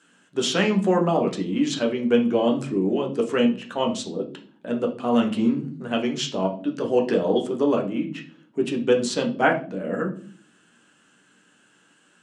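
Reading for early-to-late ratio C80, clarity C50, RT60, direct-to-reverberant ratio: 16.5 dB, 11.0 dB, 0.45 s, 1.0 dB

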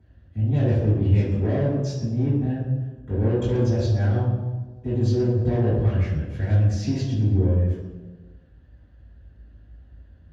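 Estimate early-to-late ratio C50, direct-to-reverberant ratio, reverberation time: 0.5 dB, -9.5 dB, 1.3 s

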